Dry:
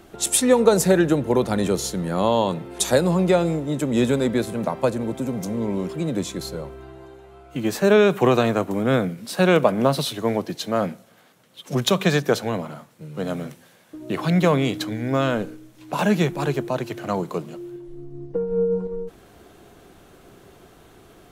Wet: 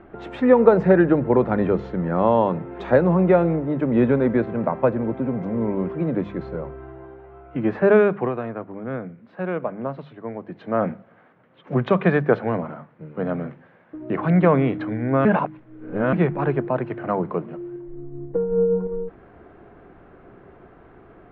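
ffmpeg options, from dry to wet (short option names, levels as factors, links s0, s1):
-filter_complex "[0:a]asplit=5[s0][s1][s2][s3][s4];[s0]atrim=end=8.33,asetpts=PTS-STARTPTS,afade=t=out:st=7.86:d=0.47:silence=0.266073[s5];[s1]atrim=start=8.33:end=10.4,asetpts=PTS-STARTPTS,volume=0.266[s6];[s2]atrim=start=10.4:end=15.252,asetpts=PTS-STARTPTS,afade=t=in:d=0.47:silence=0.266073[s7];[s3]atrim=start=15.248:end=16.132,asetpts=PTS-STARTPTS,areverse[s8];[s4]atrim=start=16.128[s9];[s5][s6][s7]concat=n=3:v=0:a=1[s10];[s10][s8]acrossfade=d=0.004:c1=hsin:c2=hsin[s11];[s11][s9]acrossfade=d=0.004:c1=hsin:c2=hsin,lowpass=f=2000:w=0.5412,lowpass=f=2000:w=1.3066,bandreject=f=50:t=h:w=6,bandreject=f=100:t=h:w=6,bandreject=f=150:t=h:w=6,bandreject=f=200:t=h:w=6,volume=1.26"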